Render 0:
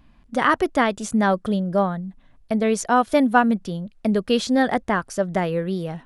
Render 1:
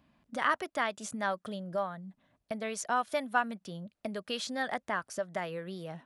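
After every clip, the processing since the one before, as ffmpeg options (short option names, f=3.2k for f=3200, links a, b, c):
-filter_complex "[0:a]highpass=110,equalizer=f=610:w=5.8:g=6,acrossover=split=830[a][b];[a]acompressor=threshold=-31dB:ratio=4[c];[c][b]amix=inputs=2:normalize=0,volume=-8.5dB"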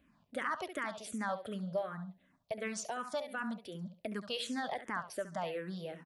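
-filter_complex "[0:a]alimiter=level_in=1dB:limit=-24dB:level=0:latency=1:release=33,volume=-1dB,asplit=2[a][b];[b]aecho=0:1:69|138|207:0.282|0.0789|0.0221[c];[a][c]amix=inputs=2:normalize=0,asplit=2[d][e];[e]afreqshift=-2.7[f];[d][f]amix=inputs=2:normalize=1,volume=1dB"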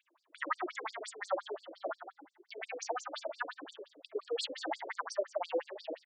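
-filter_complex "[0:a]asplit=6[a][b][c][d][e][f];[b]adelay=103,afreqshift=56,volume=-8.5dB[g];[c]adelay=206,afreqshift=112,volume=-15.2dB[h];[d]adelay=309,afreqshift=168,volume=-22dB[i];[e]adelay=412,afreqshift=224,volume=-28.7dB[j];[f]adelay=515,afreqshift=280,volume=-35.5dB[k];[a][g][h][i][j][k]amix=inputs=6:normalize=0,afftfilt=real='re*between(b*sr/1024,390*pow(6400/390,0.5+0.5*sin(2*PI*5.7*pts/sr))/1.41,390*pow(6400/390,0.5+0.5*sin(2*PI*5.7*pts/sr))*1.41)':imag='im*between(b*sr/1024,390*pow(6400/390,0.5+0.5*sin(2*PI*5.7*pts/sr))/1.41,390*pow(6400/390,0.5+0.5*sin(2*PI*5.7*pts/sr))*1.41)':win_size=1024:overlap=0.75,volume=8dB"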